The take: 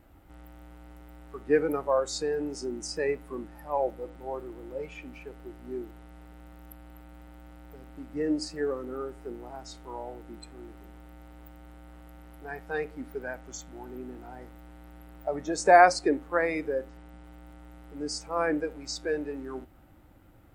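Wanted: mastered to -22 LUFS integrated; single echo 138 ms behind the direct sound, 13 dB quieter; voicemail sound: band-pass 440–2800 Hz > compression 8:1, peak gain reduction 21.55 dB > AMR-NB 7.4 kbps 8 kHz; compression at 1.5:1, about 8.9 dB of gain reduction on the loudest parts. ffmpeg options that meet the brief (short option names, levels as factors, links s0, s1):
-af "acompressor=threshold=0.0141:ratio=1.5,highpass=440,lowpass=2800,aecho=1:1:138:0.224,acompressor=threshold=0.00631:ratio=8,volume=29.9" -ar 8000 -c:a libopencore_amrnb -b:a 7400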